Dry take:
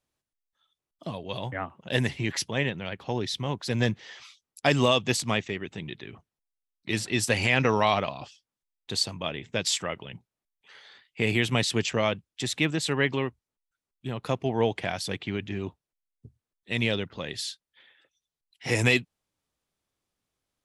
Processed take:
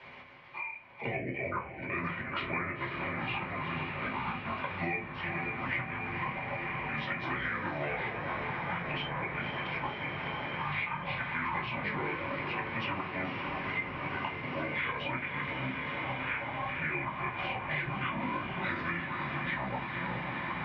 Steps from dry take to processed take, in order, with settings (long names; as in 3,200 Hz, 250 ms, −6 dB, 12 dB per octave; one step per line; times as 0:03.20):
pitch shift by two crossfaded delay taps −6.5 semitones
delay with pitch and tempo change per echo 266 ms, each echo −7 semitones, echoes 2, each echo −6 dB
tilt shelving filter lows −3 dB, about 1,400 Hz
downward compressor 16 to 1, threshold −36 dBFS, peak gain reduction 19 dB
volume swells 201 ms
loudspeaker in its box 120–3,000 Hz, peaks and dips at 120 Hz −6 dB, 310 Hz −6 dB, 980 Hz +9 dB, 2,200 Hz +8 dB
feedback delay with all-pass diffusion 510 ms, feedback 79%, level −9 dB
convolution reverb RT60 0.30 s, pre-delay 3 ms, DRR −5.5 dB
multiband upward and downward compressor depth 100%
level −1.5 dB